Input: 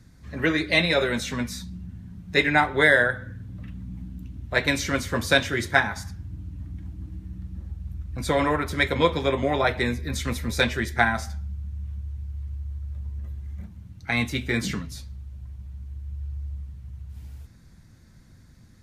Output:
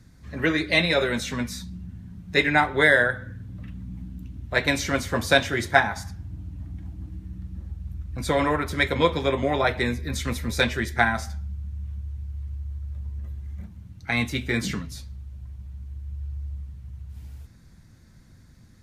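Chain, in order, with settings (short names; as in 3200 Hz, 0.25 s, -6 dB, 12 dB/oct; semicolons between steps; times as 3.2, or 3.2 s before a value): 4.67–7.09 bell 740 Hz +5.5 dB 0.55 oct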